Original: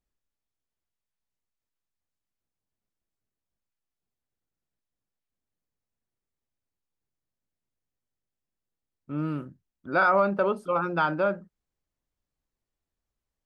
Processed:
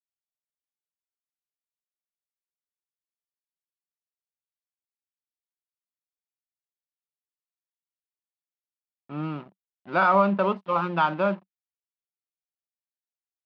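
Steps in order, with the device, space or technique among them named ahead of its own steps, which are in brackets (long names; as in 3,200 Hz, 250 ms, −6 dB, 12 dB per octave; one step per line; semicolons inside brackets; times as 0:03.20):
blown loudspeaker (dead-zone distortion −43.5 dBFS; loudspeaker in its box 180–4,300 Hz, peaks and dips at 190 Hz +9 dB, 270 Hz −6 dB, 470 Hz −6 dB, 1,000 Hz +5 dB, 1,500 Hz −4 dB, 2,800 Hz +4 dB)
level +2.5 dB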